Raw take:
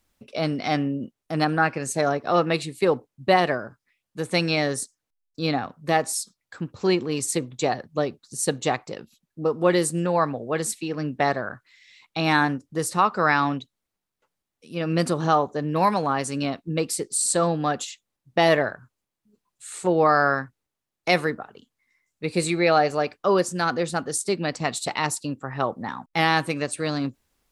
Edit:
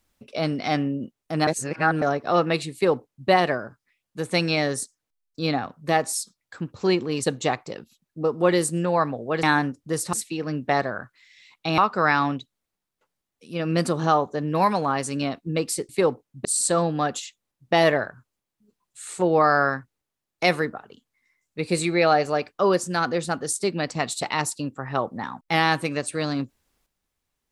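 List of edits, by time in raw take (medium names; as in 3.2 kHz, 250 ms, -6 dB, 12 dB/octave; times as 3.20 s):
1.47–2.02 s: reverse
2.73–3.29 s: copy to 17.10 s
7.24–8.45 s: delete
12.29–12.99 s: move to 10.64 s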